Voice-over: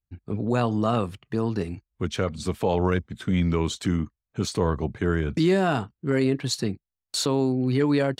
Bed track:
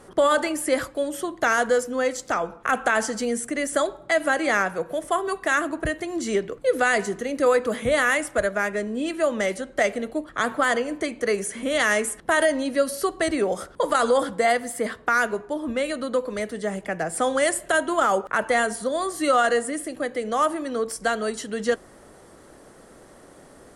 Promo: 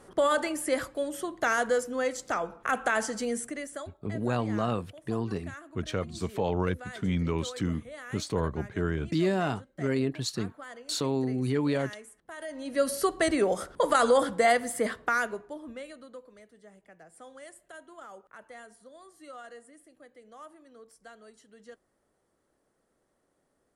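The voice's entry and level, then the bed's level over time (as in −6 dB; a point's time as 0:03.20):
3.75 s, −5.5 dB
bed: 0:03.41 −5.5 dB
0:04.00 −23 dB
0:12.37 −23 dB
0:12.86 −2 dB
0:14.89 −2 dB
0:16.43 −26 dB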